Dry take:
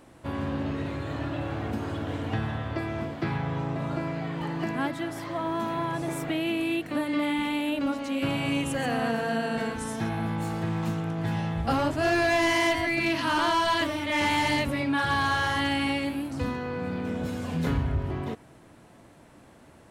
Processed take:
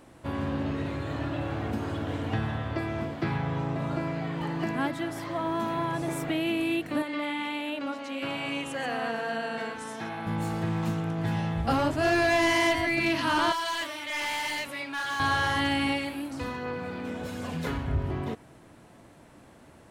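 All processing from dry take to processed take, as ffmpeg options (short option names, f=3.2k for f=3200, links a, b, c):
-filter_complex "[0:a]asettb=1/sr,asplit=3[a][b][c];[a]atrim=end=7.024[d];[b]atrim=start=7.02:end=10.27,asetpts=PTS-STARTPTS,afade=t=in:d=0.004:c=qsin,afade=t=out:st=3.246:d=0.004:c=qsin,highpass=f=570:p=1,highshelf=f=7.8k:g=-11.5[e];[c]atrim=start=10.266[f];[d][e]acrossfade=d=0.004:c1=hsin:c2=qsin[g];[g][f]acrossfade=d=0.004:c1=qsin:c2=hsin,asettb=1/sr,asplit=3[h][i][j];[h]atrim=end=13.524[k];[i]atrim=start=13.52:end=15.2,asetpts=PTS-STARTPTS,afade=t=in:d=0.004:c=qsin,afade=t=out:st=1.676:d=0.004:c=qsin,highpass=f=1.4k:p=1,asoftclip=type=hard:threshold=-27dB[l];[j]atrim=start=15.196[m];[k][l]acrossfade=d=0.004:c1=hsin:c2=qsin[n];[n][m]acrossfade=d=0.004:c1=qsin:c2=hsin,asettb=1/sr,asplit=3[o][p][q];[o]atrim=end=15.924[r];[p]atrim=start=15.92:end=17.88,asetpts=PTS-STARTPTS,afade=t=in:d=0.004:c=qsin,afade=t=out:st=1.956:d=0.004:c=qsin,lowshelf=f=350:g=-7.5,aphaser=in_gain=1:out_gain=1:delay=3.7:decay=0.27:speed=1.3:type=sinusoidal[s];[q]atrim=start=17.876[t];[r][s]acrossfade=d=0.004:c1=hsin:c2=qsin[u];[u][t]acrossfade=d=0.004:c1=qsin:c2=hsin"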